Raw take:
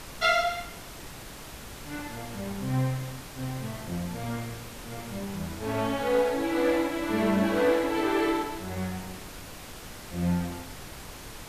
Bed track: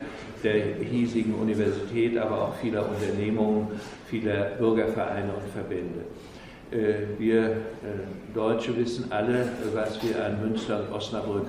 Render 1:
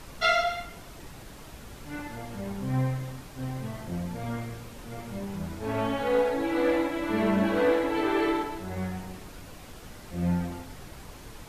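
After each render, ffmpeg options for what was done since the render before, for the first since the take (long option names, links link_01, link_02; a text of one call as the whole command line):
ffmpeg -i in.wav -af "afftdn=noise_reduction=6:noise_floor=-43" out.wav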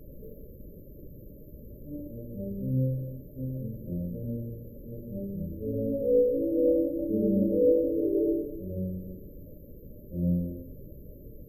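ffmpeg -i in.wav -af "afftfilt=real='re*(1-between(b*sr/4096,620,12000))':imag='im*(1-between(b*sr/4096,620,12000))':win_size=4096:overlap=0.75,adynamicequalizer=threshold=0.0158:dfrequency=560:dqfactor=2.4:tfrequency=560:tqfactor=2.4:attack=5:release=100:ratio=0.375:range=1.5:mode=boostabove:tftype=bell" out.wav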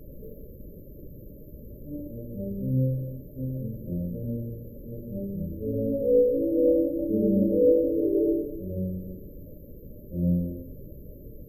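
ffmpeg -i in.wav -af "volume=2.5dB" out.wav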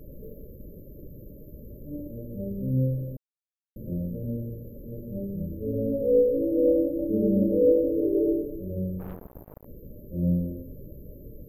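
ffmpeg -i in.wav -filter_complex "[0:a]asplit=3[link_01][link_02][link_03];[link_01]afade=type=out:start_time=8.99:duration=0.02[link_04];[link_02]acrusher=bits=5:mix=0:aa=0.5,afade=type=in:start_time=8.99:duration=0.02,afade=type=out:start_time=9.64:duration=0.02[link_05];[link_03]afade=type=in:start_time=9.64:duration=0.02[link_06];[link_04][link_05][link_06]amix=inputs=3:normalize=0,asplit=3[link_07][link_08][link_09];[link_07]atrim=end=3.17,asetpts=PTS-STARTPTS,afade=type=out:start_time=3.166:duration=0.004:curve=hsin[link_10];[link_08]atrim=start=3.17:end=3.76,asetpts=PTS-STARTPTS,volume=0[link_11];[link_09]atrim=start=3.76,asetpts=PTS-STARTPTS,afade=type=in:duration=0.004:curve=hsin[link_12];[link_10][link_11][link_12]concat=n=3:v=0:a=1" out.wav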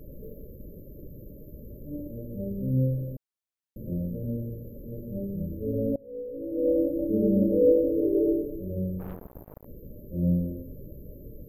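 ffmpeg -i in.wav -filter_complex "[0:a]asplit=2[link_01][link_02];[link_01]atrim=end=5.96,asetpts=PTS-STARTPTS,afade=type=out:start_time=5.956:duration=0.004:curve=hsin:silence=0.0749894[link_03];[link_02]atrim=start=5.96,asetpts=PTS-STARTPTS,afade=type=in:duration=0.88:curve=qua:silence=0.0749894[link_04];[link_03][link_04]concat=n=2:v=0:a=1" out.wav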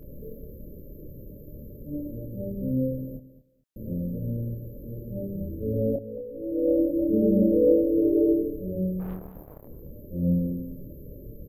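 ffmpeg -i in.wav -filter_complex "[0:a]asplit=2[link_01][link_02];[link_02]adelay=27,volume=-4.5dB[link_03];[link_01][link_03]amix=inputs=2:normalize=0,aecho=1:1:222|444:0.178|0.0338" out.wav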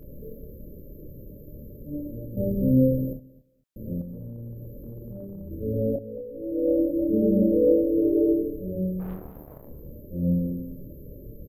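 ffmpeg -i in.wav -filter_complex "[0:a]asettb=1/sr,asplit=3[link_01][link_02][link_03];[link_01]atrim=end=4.014[link_04];[link_02]atrim=start=4.01:end=5.51,asetpts=PTS-STARTPTS,afade=type=in:duration=0.004:curve=qsin,afade=type=out:start_time=1.496:duration=0.004:curve=qsin,acompressor=threshold=-34dB:ratio=6:attack=3.2:release=140:knee=1:detection=peak[link_05];[link_03]atrim=start=5.506[link_06];[link_04][link_05]acrossfade=duration=0.004:curve1=hsin:curve2=qsin[link_07];[link_07][link_06]acrossfade=duration=0.004:curve1=qsin:curve2=hsin,asplit=3[link_08][link_09][link_10];[link_08]afade=type=out:start_time=9.16:duration=0.02[link_11];[link_09]asplit=2[link_12][link_13];[link_13]adelay=41,volume=-6dB[link_14];[link_12][link_14]amix=inputs=2:normalize=0,afade=type=in:start_time=9.16:duration=0.02,afade=type=out:start_time=9.98:duration=0.02[link_15];[link_10]afade=type=in:start_time=9.98:duration=0.02[link_16];[link_11][link_15][link_16]amix=inputs=3:normalize=0,asplit=3[link_17][link_18][link_19];[link_17]atrim=end=2.372[link_20];[link_18]atrim=start=2.368:end=3.132,asetpts=PTS-STARTPTS,volume=7dB[link_21];[link_19]atrim=start=3.128[link_22];[link_20][link_21]acrossfade=duration=0.004:curve1=hsin:curve2=hsin[link_23];[link_23][link_22]acrossfade=duration=0.004:curve1=hsin:curve2=hsin" out.wav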